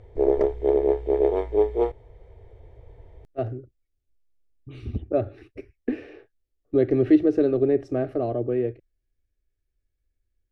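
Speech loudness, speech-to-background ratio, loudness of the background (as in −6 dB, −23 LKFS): −24.5 LKFS, −1.5 dB, −23.0 LKFS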